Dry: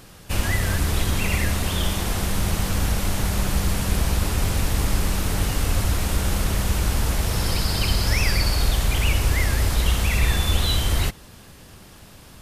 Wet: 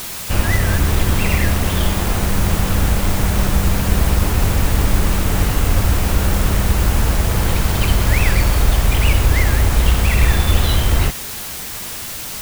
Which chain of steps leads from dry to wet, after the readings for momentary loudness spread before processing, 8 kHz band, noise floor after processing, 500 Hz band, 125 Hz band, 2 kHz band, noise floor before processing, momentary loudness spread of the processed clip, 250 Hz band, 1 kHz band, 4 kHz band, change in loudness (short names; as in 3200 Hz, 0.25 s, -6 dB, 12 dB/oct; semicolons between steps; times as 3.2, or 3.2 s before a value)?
3 LU, +3.5 dB, -28 dBFS, +6.5 dB, +6.5 dB, +5.0 dB, -46 dBFS, 5 LU, +6.5 dB, +6.5 dB, +2.0 dB, +5.5 dB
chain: median filter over 9 samples; added noise white -35 dBFS; gain +6.5 dB